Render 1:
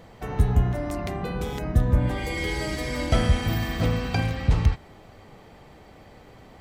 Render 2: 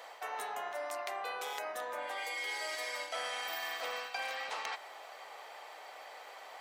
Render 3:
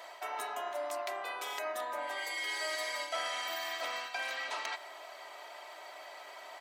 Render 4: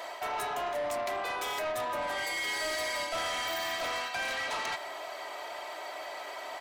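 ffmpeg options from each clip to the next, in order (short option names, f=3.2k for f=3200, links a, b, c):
-af "highpass=f=640:w=0.5412,highpass=f=640:w=1.3066,areverse,acompressor=threshold=-41dB:ratio=6,areverse,volume=4.5dB"
-af "aecho=1:1:3.1:0.66"
-af "lowshelf=f=380:g=8,asoftclip=type=tanh:threshold=-37dB,volume=7.5dB"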